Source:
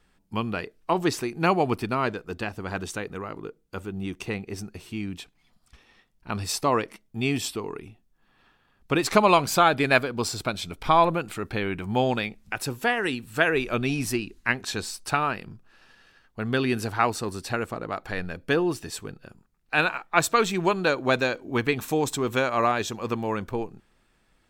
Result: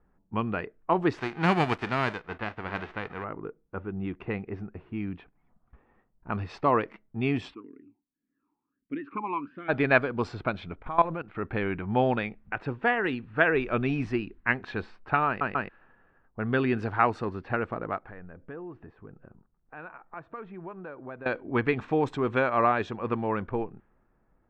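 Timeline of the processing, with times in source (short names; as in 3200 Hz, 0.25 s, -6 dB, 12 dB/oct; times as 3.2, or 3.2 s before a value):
1.17–3.23 spectral whitening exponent 0.3
7.53–9.68 vowel sweep i-u 2.2 Hz -> 1.1 Hz
10.82–11.35 level quantiser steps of 16 dB
15.27 stutter in place 0.14 s, 3 plays
17.97–21.26 compressor 2.5:1, threshold -44 dBFS
whole clip: low-pass opened by the level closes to 1000 Hz, open at -20.5 dBFS; Chebyshev low-pass 1800 Hz, order 2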